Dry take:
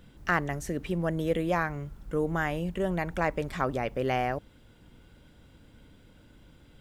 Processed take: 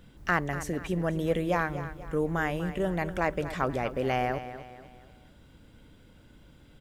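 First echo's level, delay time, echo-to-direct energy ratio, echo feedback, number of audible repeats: −12.5 dB, 243 ms, −11.5 dB, 42%, 3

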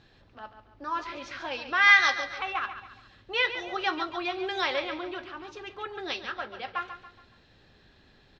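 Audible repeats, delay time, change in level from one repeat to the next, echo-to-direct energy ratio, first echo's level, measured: 4, 140 ms, −8.0 dB, −9.5 dB, −10.5 dB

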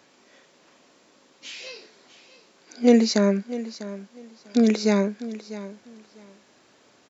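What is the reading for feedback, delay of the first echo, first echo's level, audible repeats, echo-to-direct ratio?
19%, 648 ms, −15.0 dB, 2, −15.0 dB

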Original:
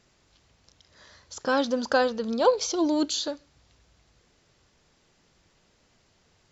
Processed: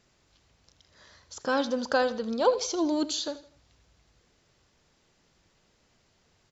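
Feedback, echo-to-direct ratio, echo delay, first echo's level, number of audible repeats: 36%, −15.5 dB, 81 ms, −16.0 dB, 3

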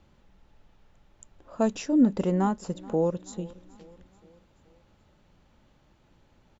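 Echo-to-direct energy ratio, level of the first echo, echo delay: −20.5 dB, −22.0 dB, 429 ms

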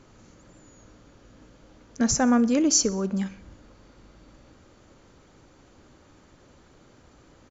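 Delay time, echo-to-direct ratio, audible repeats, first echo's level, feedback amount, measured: 62 ms, −18.5 dB, 3, −20.0 dB, 55%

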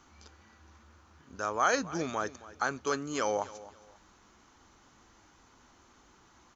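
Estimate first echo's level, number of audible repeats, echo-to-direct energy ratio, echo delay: −17.5 dB, 2, −17.0 dB, 269 ms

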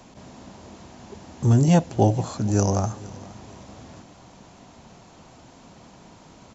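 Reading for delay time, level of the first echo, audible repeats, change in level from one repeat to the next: 466 ms, −21.0 dB, 2, −7.5 dB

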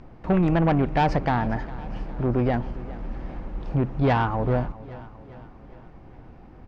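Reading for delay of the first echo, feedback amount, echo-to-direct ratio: 406 ms, 54%, −16.5 dB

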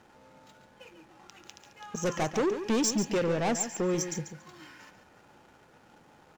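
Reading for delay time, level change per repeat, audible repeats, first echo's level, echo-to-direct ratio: 141 ms, −15.0 dB, 2, −10.0 dB, −10.0 dB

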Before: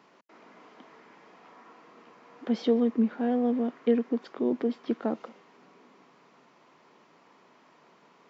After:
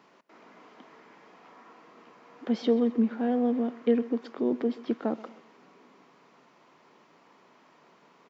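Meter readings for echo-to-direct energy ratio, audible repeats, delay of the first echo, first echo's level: −18.5 dB, 2, 130 ms, −19.0 dB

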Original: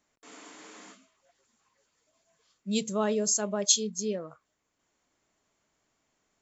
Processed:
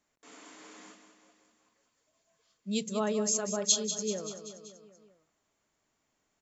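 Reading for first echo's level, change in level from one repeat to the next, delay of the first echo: −10.0 dB, −4.5 dB, 192 ms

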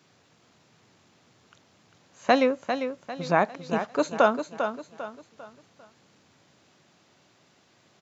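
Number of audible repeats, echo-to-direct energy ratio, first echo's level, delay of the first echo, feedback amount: 4, −7.5 dB, −8.0 dB, 398 ms, 37%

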